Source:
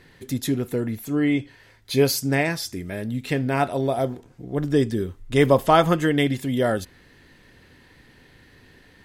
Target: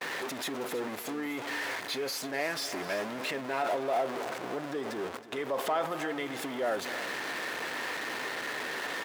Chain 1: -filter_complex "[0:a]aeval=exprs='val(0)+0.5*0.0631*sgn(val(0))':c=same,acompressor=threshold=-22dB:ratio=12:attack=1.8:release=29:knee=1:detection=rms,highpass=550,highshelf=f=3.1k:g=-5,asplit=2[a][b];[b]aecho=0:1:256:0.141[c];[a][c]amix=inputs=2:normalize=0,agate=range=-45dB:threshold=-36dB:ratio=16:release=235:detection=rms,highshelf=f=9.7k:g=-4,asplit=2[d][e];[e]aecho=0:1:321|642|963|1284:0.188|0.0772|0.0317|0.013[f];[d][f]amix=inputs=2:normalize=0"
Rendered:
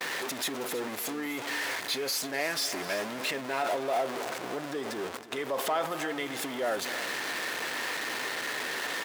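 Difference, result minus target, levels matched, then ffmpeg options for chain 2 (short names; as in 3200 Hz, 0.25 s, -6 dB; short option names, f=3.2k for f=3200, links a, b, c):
8000 Hz band +4.0 dB
-filter_complex "[0:a]aeval=exprs='val(0)+0.5*0.0631*sgn(val(0))':c=same,acompressor=threshold=-22dB:ratio=12:attack=1.8:release=29:knee=1:detection=rms,highpass=550,highshelf=f=3.1k:g=-12,asplit=2[a][b];[b]aecho=0:1:256:0.141[c];[a][c]amix=inputs=2:normalize=0,agate=range=-45dB:threshold=-36dB:ratio=16:release=235:detection=rms,highshelf=f=9.7k:g=-4,asplit=2[d][e];[e]aecho=0:1:321|642|963|1284:0.188|0.0772|0.0317|0.013[f];[d][f]amix=inputs=2:normalize=0"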